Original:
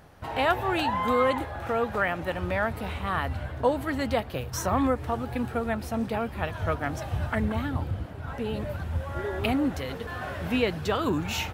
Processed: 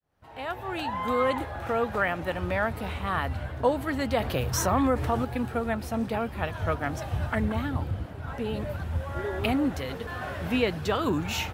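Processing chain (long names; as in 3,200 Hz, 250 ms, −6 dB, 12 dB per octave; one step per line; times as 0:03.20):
fade in at the beginning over 1.50 s
0:04.20–0:05.25: envelope flattener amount 50%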